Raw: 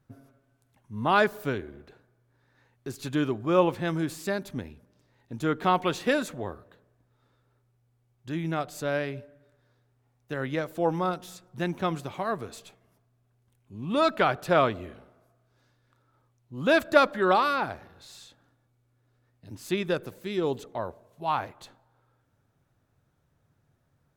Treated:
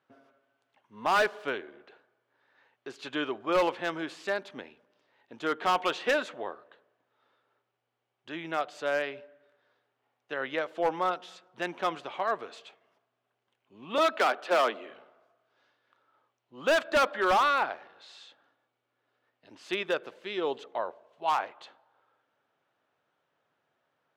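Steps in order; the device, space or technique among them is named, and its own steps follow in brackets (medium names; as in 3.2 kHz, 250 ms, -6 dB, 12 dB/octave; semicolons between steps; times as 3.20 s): megaphone (band-pass 510–3600 Hz; peaking EQ 3 kHz +5 dB 0.31 oct; hard clipper -21.5 dBFS, distortion -9 dB); 13.98–14.91 s: steep high-pass 190 Hz 96 dB/octave; trim +2 dB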